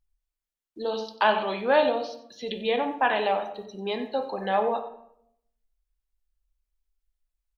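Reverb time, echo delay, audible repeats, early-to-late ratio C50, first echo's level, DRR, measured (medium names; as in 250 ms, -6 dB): 0.70 s, 92 ms, 1, 8.5 dB, -15.0 dB, 5.0 dB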